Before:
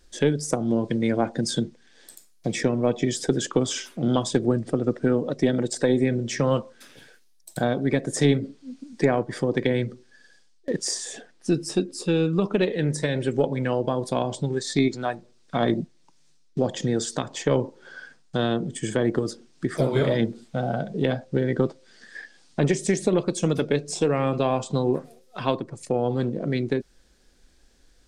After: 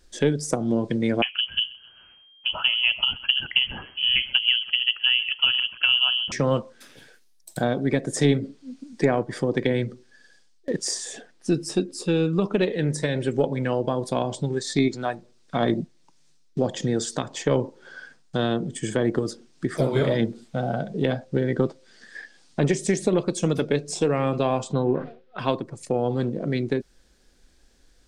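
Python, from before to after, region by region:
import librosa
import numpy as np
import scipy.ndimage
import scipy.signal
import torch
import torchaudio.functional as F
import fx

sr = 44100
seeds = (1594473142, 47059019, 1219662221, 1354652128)

y = fx.chain(x, sr, fx.echo_feedback(ms=130, feedback_pct=45, wet_db=-21.0),
    fx.freq_invert(carrier_hz=3200), at=(1.22, 6.32))
y = fx.chain(y, sr, fx.lowpass(hz=3300.0, slope=24),
    fx.peak_eq(hz=1500.0, db=7.0, octaves=0.3),
    fx.sustainer(db_per_s=120.0), at=(24.73, 25.39))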